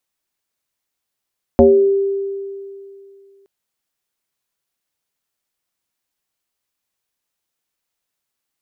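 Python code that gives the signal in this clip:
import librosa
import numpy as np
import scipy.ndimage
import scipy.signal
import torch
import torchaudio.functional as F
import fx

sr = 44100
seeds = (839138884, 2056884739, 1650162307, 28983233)

y = fx.fm2(sr, length_s=1.87, level_db=-4.5, carrier_hz=394.0, ratio=0.4, index=1.8, index_s=0.52, decay_s=2.51, shape='exponential')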